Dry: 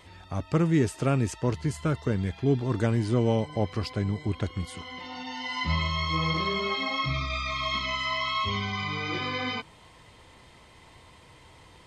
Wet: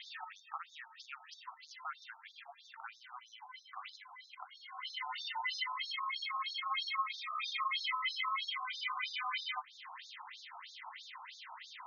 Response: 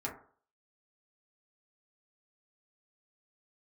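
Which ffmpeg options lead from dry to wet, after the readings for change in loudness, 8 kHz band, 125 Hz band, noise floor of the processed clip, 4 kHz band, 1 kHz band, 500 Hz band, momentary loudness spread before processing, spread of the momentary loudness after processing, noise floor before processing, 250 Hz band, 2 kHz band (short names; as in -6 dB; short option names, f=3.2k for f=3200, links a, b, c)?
-11.5 dB, -14.0 dB, under -40 dB, -61 dBFS, -7.0 dB, -7.0 dB, under -35 dB, 9 LU, 17 LU, -54 dBFS, under -40 dB, -7.5 dB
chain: -af "acompressor=threshold=-44dB:ratio=3,afftfilt=real='re*between(b*sr/1024,960*pow(5000/960,0.5+0.5*sin(2*PI*3.1*pts/sr))/1.41,960*pow(5000/960,0.5+0.5*sin(2*PI*3.1*pts/sr))*1.41)':imag='im*between(b*sr/1024,960*pow(5000/960,0.5+0.5*sin(2*PI*3.1*pts/sr))/1.41,960*pow(5000/960,0.5+0.5*sin(2*PI*3.1*pts/sr))*1.41)':win_size=1024:overlap=0.75,volume=10.5dB"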